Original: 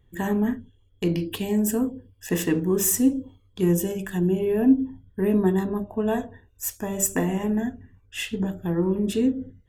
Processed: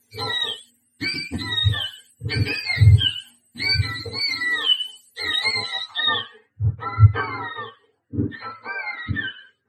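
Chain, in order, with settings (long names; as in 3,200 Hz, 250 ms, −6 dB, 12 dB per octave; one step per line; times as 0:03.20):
frequency axis turned over on the octave scale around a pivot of 890 Hz
low-pass filter sweep 12,000 Hz → 1,400 Hz, 0:05.32–0:06.66
level +2.5 dB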